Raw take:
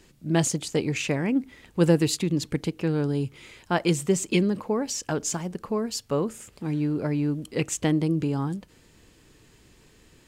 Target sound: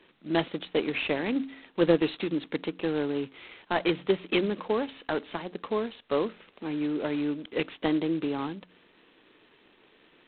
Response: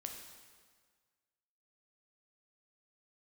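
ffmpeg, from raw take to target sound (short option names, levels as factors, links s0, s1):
-filter_complex "[0:a]bandreject=f=89.71:t=h:w=4,bandreject=f=179.42:t=h:w=4,bandreject=f=269.13:t=h:w=4,acrossover=split=220|2700[s0][s1][s2];[s0]acrusher=bits=2:mix=0:aa=0.5[s3];[s3][s1][s2]amix=inputs=3:normalize=0" -ar 8000 -c:a adpcm_g726 -b:a 16k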